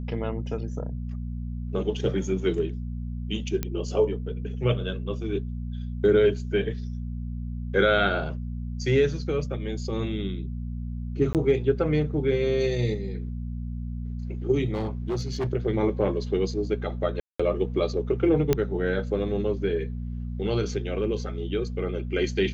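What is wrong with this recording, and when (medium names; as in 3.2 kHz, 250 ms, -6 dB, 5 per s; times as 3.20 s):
hum 60 Hz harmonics 4 -32 dBFS
3.63 s: pop -13 dBFS
11.33–11.35 s: dropout 18 ms
14.73–15.48 s: clipped -23.5 dBFS
17.20–17.39 s: dropout 195 ms
18.53 s: pop -8 dBFS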